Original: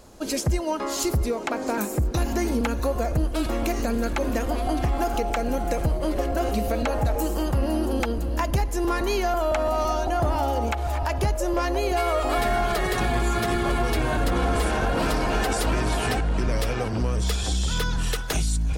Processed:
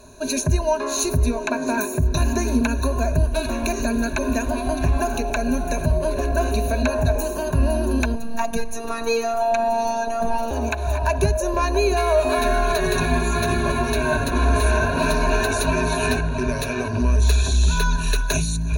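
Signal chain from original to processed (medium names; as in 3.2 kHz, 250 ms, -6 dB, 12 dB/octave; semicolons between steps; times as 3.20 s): rippled EQ curve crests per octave 1.5, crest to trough 18 dB; 8.15–10.51 s: robot voice 230 Hz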